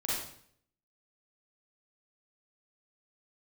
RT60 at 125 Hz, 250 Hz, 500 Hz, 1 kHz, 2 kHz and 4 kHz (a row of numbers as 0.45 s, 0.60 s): 0.75 s, 0.70 s, 0.60 s, 0.60 s, 0.60 s, 0.55 s